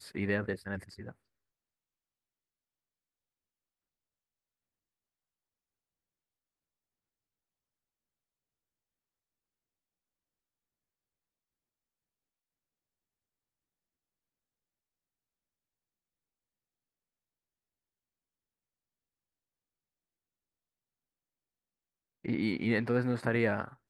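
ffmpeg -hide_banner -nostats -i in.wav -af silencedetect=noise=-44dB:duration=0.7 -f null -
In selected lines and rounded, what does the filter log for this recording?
silence_start: 1.12
silence_end: 22.25 | silence_duration: 21.13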